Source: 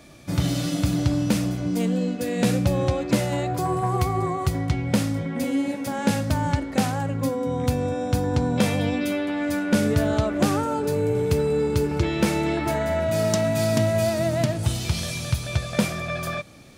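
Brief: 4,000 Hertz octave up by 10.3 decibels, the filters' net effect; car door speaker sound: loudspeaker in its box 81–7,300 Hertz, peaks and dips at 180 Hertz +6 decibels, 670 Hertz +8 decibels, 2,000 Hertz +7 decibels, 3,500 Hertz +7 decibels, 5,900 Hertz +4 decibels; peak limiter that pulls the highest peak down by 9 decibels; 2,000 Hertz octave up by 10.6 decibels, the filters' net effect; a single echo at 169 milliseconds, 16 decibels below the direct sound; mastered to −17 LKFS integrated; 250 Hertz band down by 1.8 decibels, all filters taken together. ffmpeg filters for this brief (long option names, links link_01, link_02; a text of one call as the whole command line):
ffmpeg -i in.wav -af "equalizer=frequency=250:width_type=o:gain=-5.5,equalizer=frequency=2000:width_type=o:gain=6.5,equalizer=frequency=4000:width_type=o:gain=5,alimiter=limit=-15dB:level=0:latency=1,highpass=81,equalizer=frequency=180:width_type=q:width=4:gain=6,equalizer=frequency=670:width_type=q:width=4:gain=8,equalizer=frequency=2000:width_type=q:width=4:gain=7,equalizer=frequency=3500:width_type=q:width=4:gain=7,equalizer=frequency=5900:width_type=q:width=4:gain=4,lowpass=frequency=7300:width=0.5412,lowpass=frequency=7300:width=1.3066,aecho=1:1:169:0.158,volume=5dB" out.wav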